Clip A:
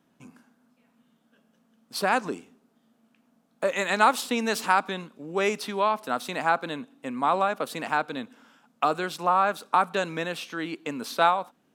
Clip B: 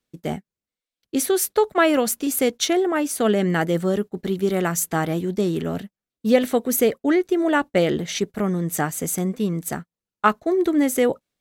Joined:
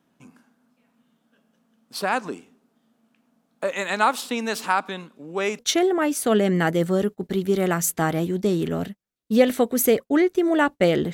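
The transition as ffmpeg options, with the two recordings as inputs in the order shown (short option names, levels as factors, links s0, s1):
-filter_complex "[0:a]apad=whole_dur=11.13,atrim=end=11.13,atrim=end=5.592[s0];[1:a]atrim=start=2.528:end=8.07[s1];[s0][s1]acrossfade=d=0.004:c1=hsin:c2=hsin"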